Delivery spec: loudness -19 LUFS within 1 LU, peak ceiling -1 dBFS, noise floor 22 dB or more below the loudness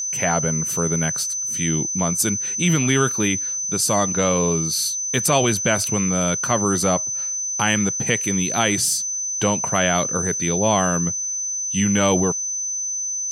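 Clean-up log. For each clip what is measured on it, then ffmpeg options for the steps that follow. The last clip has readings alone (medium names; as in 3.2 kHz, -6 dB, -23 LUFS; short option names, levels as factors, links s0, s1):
steady tone 6.1 kHz; tone level -23 dBFS; loudness -19.5 LUFS; peak level -3.5 dBFS; loudness target -19.0 LUFS
-> -af "bandreject=f=6100:w=30"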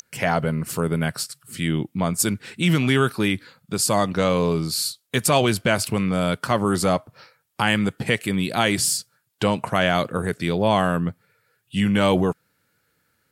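steady tone not found; loudness -22.0 LUFS; peak level -4.5 dBFS; loudness target -19.0 LUFS
-> -af "volume=1.41"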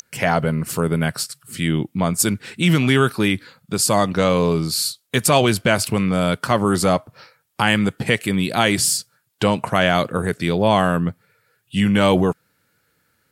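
loudness -19.0 LUFS; peak level -1.5 dBFS; noise floor -66 dBFS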